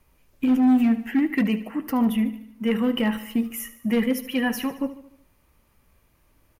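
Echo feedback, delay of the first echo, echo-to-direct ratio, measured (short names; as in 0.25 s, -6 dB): 54%, 74 ms, -13.0 dB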